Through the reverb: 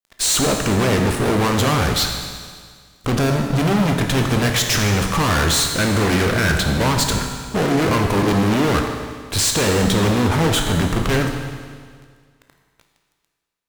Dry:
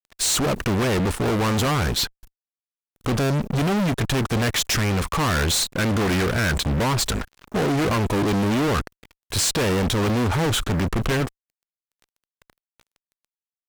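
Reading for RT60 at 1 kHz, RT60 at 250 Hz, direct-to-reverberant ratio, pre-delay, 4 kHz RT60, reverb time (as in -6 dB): 1.8 s, 1.8 s, 2.5 dB, 16 ms, 1.8 s, 1.8 s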